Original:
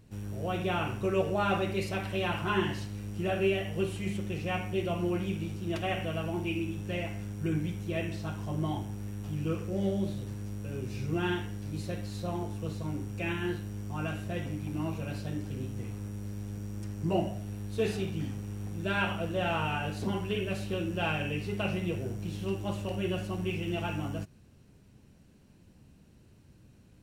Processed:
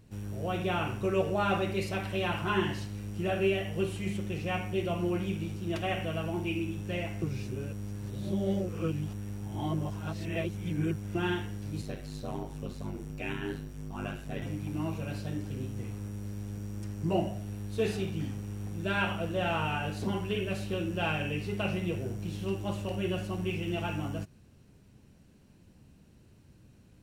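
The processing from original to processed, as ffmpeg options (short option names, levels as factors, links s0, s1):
-filter_complex "[0:a]asettb=1/sr,asplit=3[s0][s1][s2];[s0]atrim=end=11.814[s3];[s1]atrim=start=11.81:end=14.42,asetpts=PTS-STARTPTS,afade=t=in:d=0.004:c=qsin,afade=t=out:st=2.606:d=0.004:c=qsin,aeval=exprs='val(0)*sin(2*PI*49*n/s)':c=same[s4];[s2]atrim=start=14.416[s5];[s3][s4]acrossfade=d=0.004:c1=hsin:c2=qsin[s6];[s6][s5]acrossfade=d=0.004:c1=qsin:c2=hsin,asplit=3[s7][s8][s9];[s7]atrim=end=7.222[s10];[s8]atrim=start=7.218:end=11.152,asetpts=PTS-STARTPTS,areverse[s11];[s9]atrim=start=11.148[s12];[s10][s11]acrossfade=d=0.004:c1=hsin:c2=hsin[s13];[s13][s12]acrossfade=d=0.004:c1=hsin:c2=hsin"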